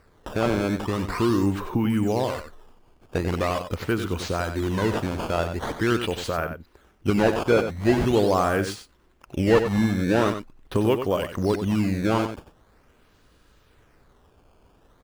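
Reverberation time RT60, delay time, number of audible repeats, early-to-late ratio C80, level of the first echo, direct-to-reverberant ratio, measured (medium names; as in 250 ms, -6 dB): no reverb, 93 ms, 1, no reverb, -9.0 dB, no reverb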